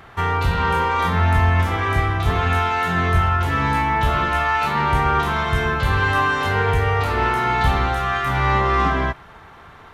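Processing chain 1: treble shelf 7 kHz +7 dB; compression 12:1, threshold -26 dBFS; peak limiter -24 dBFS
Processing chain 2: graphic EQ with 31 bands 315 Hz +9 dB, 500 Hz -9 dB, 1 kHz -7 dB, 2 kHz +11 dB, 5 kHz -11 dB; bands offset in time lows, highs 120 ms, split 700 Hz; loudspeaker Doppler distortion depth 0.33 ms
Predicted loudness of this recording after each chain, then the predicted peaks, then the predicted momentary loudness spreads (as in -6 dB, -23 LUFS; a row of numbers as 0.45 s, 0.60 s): -32.5 LUFS, -18.5 LUFS; -24.0 dBFS, -5.0 dBFS; 2 LU, 4 LU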